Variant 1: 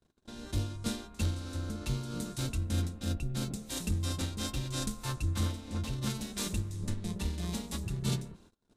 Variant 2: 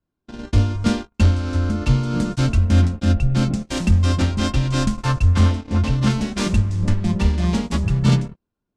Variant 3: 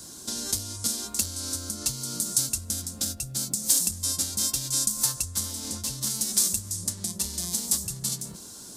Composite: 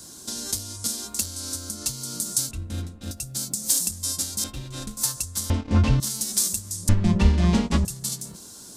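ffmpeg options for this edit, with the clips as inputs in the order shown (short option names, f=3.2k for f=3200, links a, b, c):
-filter_complex "[0:a]asplit=2[a][b];[1:a]asplit=2[c][d];[2:a]asplit=5[e][f][g][h][i];[e]atrim=end=2.512[j];[a]atrim=start=2.508:end=3.112[k];[f]atrim=start=3.108:end=4.442[l];[b]atrim=start=4.438:end=4.972[m];[g]atrim=start=4.968:end=5.502[n];[c]atrim=start=5.498:end=6.002[o];[h]atrim=start=5.998:end=6.892[p];[d]atrim=start=6.888:end=7.852[q];[i]atrim=start=7.848[r];[j][k]acrossfade=d=0.004:c1=hsin:c2=hsin[s];[s][l]acrossfade=d=0.004:c1=hsin:c2=hsin[t];[t][m]acrossfade=d=0.004:c1=hsin:c2=hsin[u];[u][n]acrossfade=d=0.004:c1=hsin:c2=hsin[v];[v][o]acrossfade=d=0.004:c1=hsin:c2=hsin[w];[w][p]acrossfade=d=0.004:c1=hsin:c2=hsin[x];[x][q]acrossfade=d=0.004:c1=hsin:c2=hsin[y];[y][r]acrossfade=d=0.004:c1=hsin:c2=hsin"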